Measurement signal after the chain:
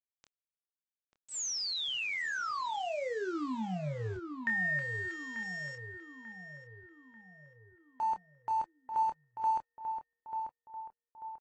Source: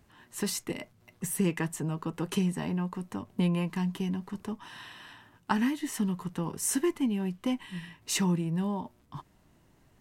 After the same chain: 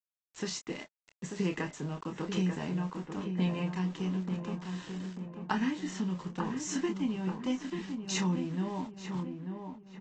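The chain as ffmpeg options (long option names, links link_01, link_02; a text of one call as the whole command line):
ffmpeg -i in.wav -filter_complex "[0:a]lowshelf=frequency=82:gain=-8,aresample=16000,aeval=exprs='val(0)*gte(abs(val(0)),0.00596)':channel_layout=same,aresample=44100,asplit=2[link_01][link_02];[link_02]adelay=27,volume=-7dB[link_03];[link_01][link_03]amix=inputs=2:normalize=0,asplit=2[link_04][link_05];[link_05]adelay=890,lowpass=frequency=1600:poles=1,volume=-6dB,asplit=2[link_06][link_07];[link_07]adelay=890,lowpass=frequency=1600:poles=1,volume=0.52,asplit=2[link_08][link_09];[link_09]adelay=890,lowpass=frequency=1600:poles=1,volume=0.52,asplit=2[link_10][link_11];[link_11]adelay=890,lowpass=frequency=1600:poles=1,volume=0.52,asplit=2[link_12][link_13];[link_13]adelay=890,lowpass=frequency=1600:poles=1,volume=0.52,asplit=2[link_14][link_15];[link_15]adelay=890,lowpass=frequency=1600:poles=1,volume=0.52[link_16];[link_04][link_06][link_08][link_10][link_12][link_14][link_16]amix=inputs=7:normalize=0,volume=-3.5dB" -ar 32000 -c:a aac -b:a 32k out.aac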